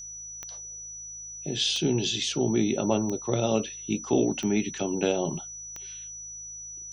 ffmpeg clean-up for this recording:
ffmpeg -i in.wav -af "adeclick=threshold=4,bandreject=frequency=53.8:width_type=h:width=4,bandreject=frequency=107.6:width_type=h:width=4,bandreject=frequency=161.4:width_type=h:width=4,bandreject=frequency=5900:width=30" out.wav

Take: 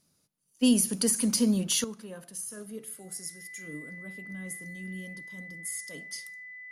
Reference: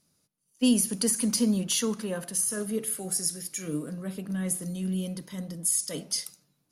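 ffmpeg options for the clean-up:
ffmpeg -i in.wav -af "bandreject=frequency=2000:width=30,asetnsamples=nb_out_samples=441:pad=0,asendcmd='1.84 volume volume 10.5dB',volume=0dB" out.wav

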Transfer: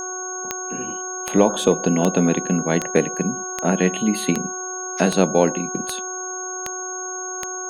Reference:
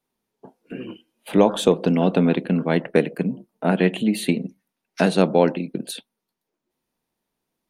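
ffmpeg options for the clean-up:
ffmpeg -i in.wav -af "adeclick=threshold=4,bandreject=frequency=369.4:width_type=h:width=4,bandreject=frequency=738.8:width_type=h:width=4,bandreject=frequency=1108.2:width_type=h:width=4,bandreject=frequency=1477.6:width_type=h:width=4,bandreject=frequency=6500:width=30" out.wav

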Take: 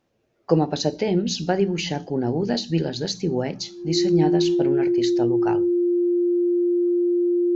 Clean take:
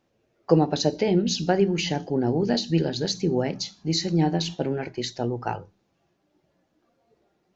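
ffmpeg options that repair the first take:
ffmpeg -i in.wav -af "bandreject=frequency=350:width=30" out.wav

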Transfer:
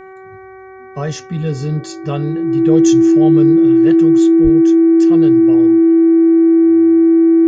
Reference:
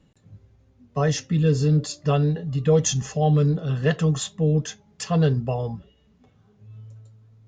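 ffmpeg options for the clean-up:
ffmpeg -i in.wav -filter_complex "[0:a]bandreject=frequency=379.6:width_type=h:width=4,bandreject=frequency=759.2:width_type=h:width=4,bandreject=frequency=1138.8:width_type=h:width=4,bandreject=frequency=1518.4:width_type=h:width=4,bandreject=frequency=1898:width_type=h:width=4,bandreject=frequency=2277.6:width_type=h:width=4,bandreject=frequency=330:width=30,asplit=3[link_01][link_02][link_03];[link_01]afade=type=out:start_time=4.43:duration=0.02[link_04];[link_02]highpass=frequency=140:width=0.5412,highpass=frequency=140:width=1.3066,afade=type=in:start_time=4.43:duration=0.02,afade=type=out:start_time=4.55:duration=0.02[link_05];[link_03]afade=type=in:start_time=4.55:duration=0.02[link_06];[link_04][link_05][link_06]amix=inputs=3:normalize=0,asetnsamples=nb_out_samples=441:pad=0,asendcmd='3.67 volume volume 4dB',volume=0dB" out.wav

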